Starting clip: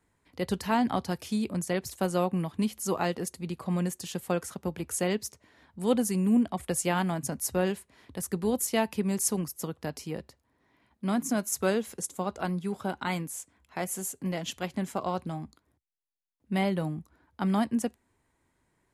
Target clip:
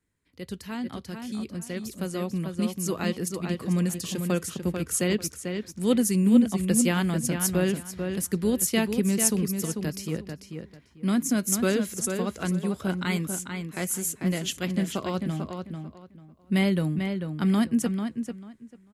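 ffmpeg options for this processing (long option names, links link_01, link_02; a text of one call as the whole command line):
ffmpeg -i in.wav -filter_complex "[0:a]equalizer=frequency=810:width_type=o:width=1.1:gain=-12,asplit=2[link_01][link_02];[link_02]adelay=443,lowpass=frequency=3700:poles=1,volume=-6dB,asplit=2[link_03][link_04];[link_04]adelay=443,lowpass=frequency=3700:poles=1,volume=0.23,asplit=2[link_05][link_06];[link_06]adelay=443,lowpass=frequency=3700:poles=1,volume=0.23[link_07];[link_03][link_05][link_07]amix=inputs=3:normalize=0[link_08];[link_01][link_08]amix=inputs=2:normalize=0,dynaudnorm=framelen=610:gausssize=9:maxgain=11.5dB,volume=-5dB" out.wav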